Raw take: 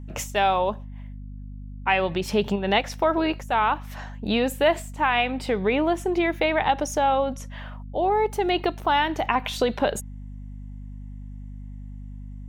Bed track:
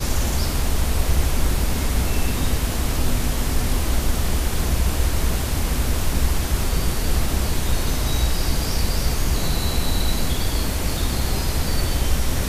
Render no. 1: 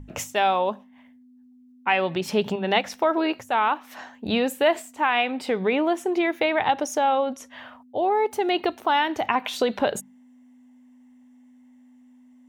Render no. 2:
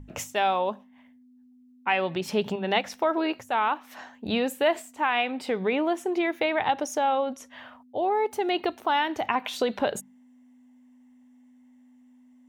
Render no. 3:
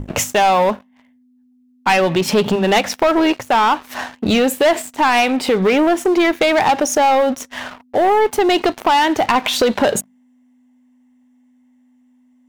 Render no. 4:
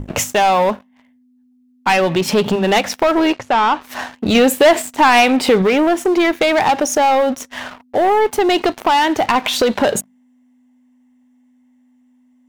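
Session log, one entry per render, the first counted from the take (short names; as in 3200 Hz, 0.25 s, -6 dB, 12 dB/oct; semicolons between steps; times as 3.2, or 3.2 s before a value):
notches 50/100/150/200 Hz
gain -3 dB
sample leveller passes 3; in parallel at +2 dB: compressor, threshold -25 dBFS, peak gain reduction 11 dB
3.33–3.81 air absorption 67 m; 4.35–5.62 gain +3.5 dB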